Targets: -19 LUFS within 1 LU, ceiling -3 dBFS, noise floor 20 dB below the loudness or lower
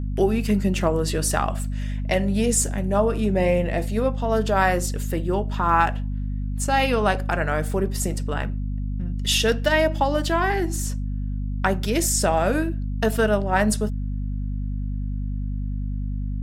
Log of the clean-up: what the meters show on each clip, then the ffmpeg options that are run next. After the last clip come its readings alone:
hum 50 Hz; highest harmonic 250 Hz; hum level -24 dBFS; loudness -23.5 LUFS; peak level -6.0 dBFS; loudness target -19.0 LUFS
-> -af "bandreject=f=50:t=h:w=6,bandreject=f=100:t=h:w=6,bandreject=f=150:t=h:w=6,bandreject=f=200:t=h:w=6,bandreject=f=250:t=h:w=6"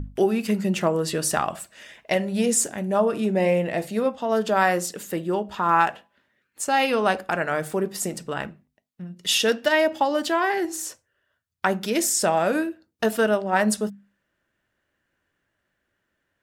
hum not found; loudness -23.5 LUFS; peak level -6.5 dBFS; loudness target -19.0 LUFS
-> -af "volume=1.68,alimiter=limit=0.708:level=0:latency=1"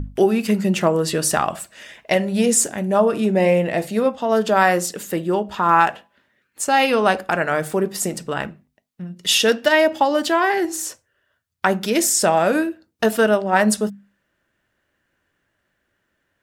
loudness -19.0 LUFS; peak level -3.0 dBFS; noise floor -72 dBFS

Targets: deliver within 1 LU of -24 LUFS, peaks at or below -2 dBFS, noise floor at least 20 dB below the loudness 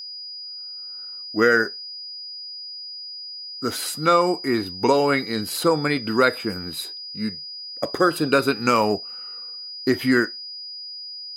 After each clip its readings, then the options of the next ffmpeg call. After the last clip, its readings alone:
steady tone 4.9 kHz; tone level -33 dBFS; loudness -23.5 LUFS; peak level -4.0 dBFS; loudness target -24.0 LUFS
-> -af "bandreject=f=4900:w=30"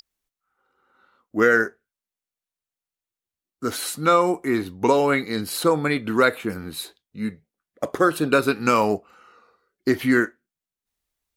steady tone not found; loudness -22.0 LUFS; peak level -4.0 dBFS; loudness target -24.0 LUFS
-> -af "volume=0.794"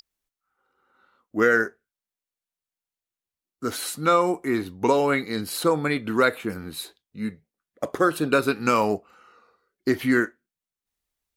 loudness -24.0 LUFS; peak level -6.0 dBFS; noise floor -91 dBFS

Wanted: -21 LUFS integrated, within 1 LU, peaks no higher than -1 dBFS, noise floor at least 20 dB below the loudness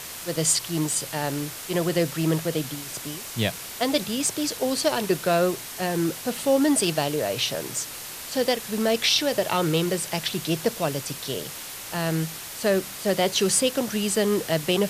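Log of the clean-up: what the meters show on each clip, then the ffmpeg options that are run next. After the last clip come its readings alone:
noise floor -37 dBFS; noise floor target -45 dBFS; loudness -25.0 LUFS; peak level -7.5 dBFS; loudness target -21.0 LUFS
-> -af "afftdn=nr=8:nf=-37"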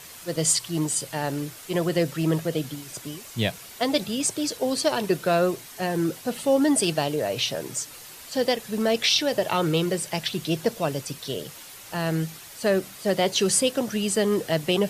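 noise floor -44 dBFS; noise floor target -45 dBFS
-> -af "afftdn=nr=6:nf=-44"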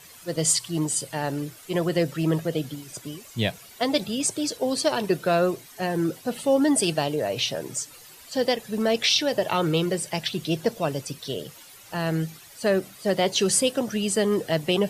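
noise floor -48 dBFS; loudness -25.0 LUFS; peak level -8.0 dBFS; loudness target -21.0 LUFS
-> -af "volume=1.58"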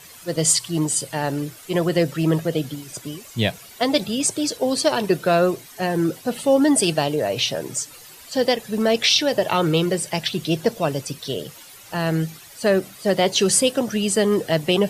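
loudness -21.0 LUFS; peak level -4.0 dBFS; noise floor -44 dBFS

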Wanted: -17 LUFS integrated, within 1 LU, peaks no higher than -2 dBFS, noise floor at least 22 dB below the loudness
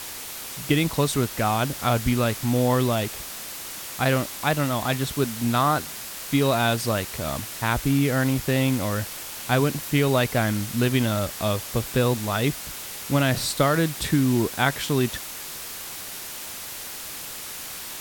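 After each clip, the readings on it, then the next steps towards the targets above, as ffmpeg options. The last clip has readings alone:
noise floor -36 dBFS; noise floor target -47 dBFS; loudness -24.5 LUFS; peak level -6.5 dBFS; loudness target -17.0 LUFS
-> -af "afftdn=nr=11:nf=-36"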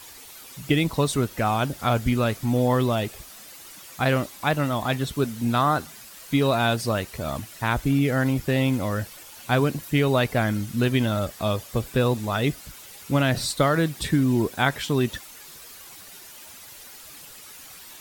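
noise floor -44 dBFS; noise floor target -46 dBFS
-> -af "afftdn=nr=6:nf=-44"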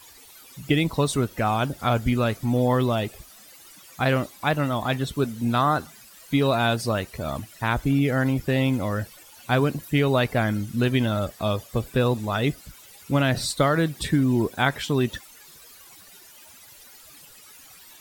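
noise floor -49 dBFS; loudness -24.0 LUFS; peak level -6.5 dBFS; loudness target -17.0 LUFS
-> -af "volume=2.24,alimiter=limit=0.794:level=0:latency=1"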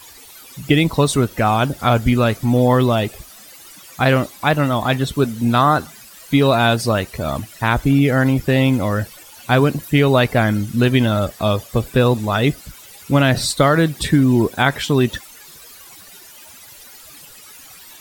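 loudness -17.0 LUFS; peak level -2.0 dBFS; noise floor -42 dBFS

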